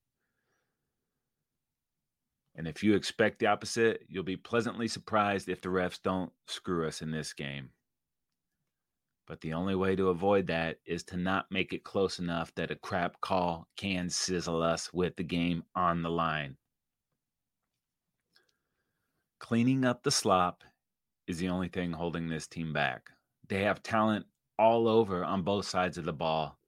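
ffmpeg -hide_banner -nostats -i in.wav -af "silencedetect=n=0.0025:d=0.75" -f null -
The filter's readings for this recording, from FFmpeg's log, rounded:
silence_start: 0.00
silence_end: 2.55 | silence_duration: 2.55
silence_start: 7.68
silence_end: 9.28 | silence_duration: 1.59
silence_start: 16.55
silence_end: 18.36 | silence_duration: 1.82
silence_start: 18.49
silence_end: 19.41 | silence_duration: 0.92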